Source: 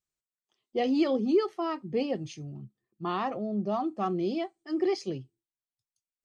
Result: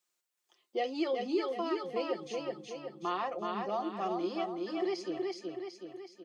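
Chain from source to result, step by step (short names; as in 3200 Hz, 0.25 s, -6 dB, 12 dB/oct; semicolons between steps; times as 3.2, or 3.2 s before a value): HPF 400 Hz 12 dB/oct; comb 5.7 ms, depth 46%; on a send: feedback echo 0.373 s, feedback 41%, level -4 dB; on the sum: three-band squash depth 40%; gain -4 dB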